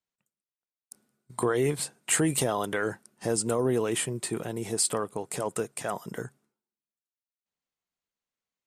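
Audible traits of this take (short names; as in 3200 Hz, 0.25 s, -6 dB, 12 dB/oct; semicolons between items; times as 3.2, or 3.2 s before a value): noise floor -96 dBFS; spectral tilt -3.5 dB/oct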